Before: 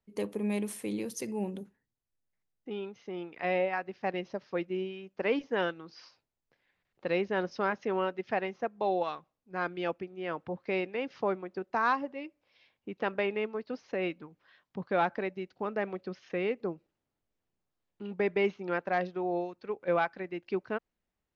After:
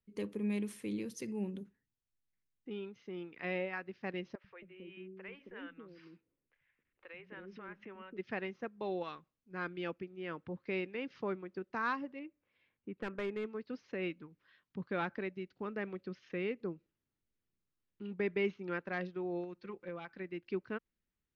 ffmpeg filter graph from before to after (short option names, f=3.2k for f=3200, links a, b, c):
-filter_complex "[0:a]asettb=1/sr,asplit=3[a][b][c];[a]atrim=end=4.354[d];[b]atrim=start=4.35:end=8.17,asetpts=PTS-STARTPTS,afade=t=in:d=0.004:c=qsin,afade=t=out:st=3.816:d=0.004:c=qsin,highshelf=f=3.6k:t=q:w=1.5:g=-12,acompressor=threshold=-42dB:ratio=2.5:attack=3.2:release=140:knee=1:detection=peak,acrossover=split=150|450[e][f][g];[e]adelay=90[h];[f]adelay=270[i];[h][i][g]amix=inputs=3:normalize=0,atrim=end_sample=168462[j];[c]atrim=start=8.166[k];[d][j]acrossfade=d=0.004:c1=hsin:c2=qsin[l];[l][k]acrossfade=d=0.004:c1=qsin:c2=hsin,asettb=1/sr,asplit=3[m][n][o];[m]atrim=end=12.194[p];[n]atrim=start=12.19:end=13.45,asetpts=PTS-STARTPTS,afade=t=in:d=0.004:c=qsin,afade=t=out:st=1.256:d=0.004:c=qsin,lowpass=2k,aeval=exprs='clip(val(0),-1,0.0447)':c=same[q];[o]atrim=start=13.446[r];[p][q]acrossfade=d=0.004:c1=hsin:c2=qsin[s];[s][r]acrossfade=d=0.004:c1=qsin:c2=hsin,asettb=1/sr,asplit=3[t][u][v];[t]atrim=end=19.434[w];[u]atrim=start=19.43:end=20.09,asetpts=PTS-STARTPTS,afade=t=in:d=0.004:c=qsin,afade=t=out:st=0.656:d=0.004:c=qsin,aecho=1:1:5.7:0.96,atrim=end_sample=29106,acompressor=threshold=-33dB:ratio=5:attack=3.2:release=140:knee=1:detection=peak[x];[v]atrim=start=20.086[y];[w][x]acrossfade=d=0.004:c1=hsin:c2=qsin[z];[z][y]acrossfade=d=0.004:c1=qsin:c2=hsin,lowpass=f=3.4k:p=1,equalizer=f=720:w=1.3:g=-12,volume=-2dB"